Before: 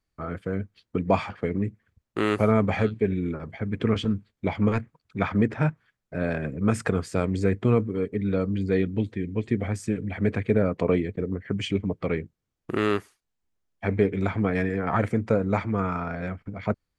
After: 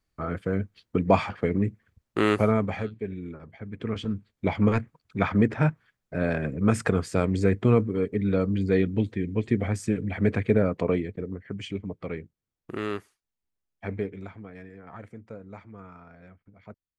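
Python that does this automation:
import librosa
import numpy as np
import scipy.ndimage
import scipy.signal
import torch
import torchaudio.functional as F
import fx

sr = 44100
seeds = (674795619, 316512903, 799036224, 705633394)

y = fx.gain(x, sr, db=fx.line((2.3, 2.0), (2.91, -9.0), (3.76, -9.0), (4.47, 1.0), (10.48, 1.0), (11.53, -7.0), (13.94, -7.0), (14.45, -19.0)))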